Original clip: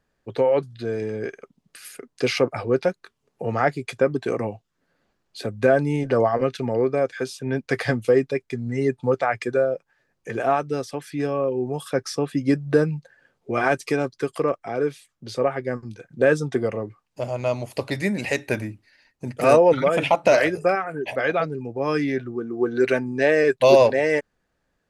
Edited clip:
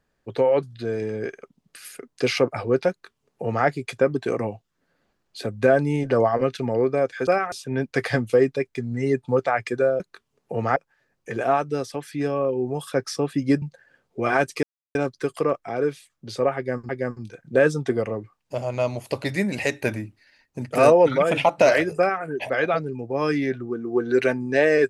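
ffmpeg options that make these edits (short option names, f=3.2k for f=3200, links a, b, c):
-filter_complex "[0:a]asplit=8[a][b][c][d][e][f][g][h];[a]atrim=end=7.272[i];[b]atrim=start=20.638:end=20.892[j];[c]atrim=start=7.268:end=9.752[k];[d]atrim=start=2.898:end=3.662[l];[e]atrim=start=9.748:end=12.612[m];[f]atrim=start=12.928:end=13.94,asetpts=PTS-STARTPTS,afade=t=out:st=1.008:d=0.004:c=hsin,apad=pad_dur=0.32[n];[g]atrim=start=13.94:end=15.882,asetpts=PTS-STARTPTS,afade=t=in:d=0.004:c=hsin[o];[h]atrim=start=15.548[p];[i][j]acrossfade=d=0.004:c1=hsin:c2=hsin[q];[q][k]acrossfade=d=0.004:c1=hsin:c2=hsin[r];[r][l]acrossfade=d=0.004:c1=hsin:c2=hsin[s];[s][m]acrossfade=d=0.004:c1=hsin:c2=hsin[t];[n][o]concat=n=2:v=0:a=1[u];[t][u]acrossfade=d=0.004:c1=hsin:c2=hsin[v];[v][p]acrossfade=d=0.004:c1=hsin:c2=hsin"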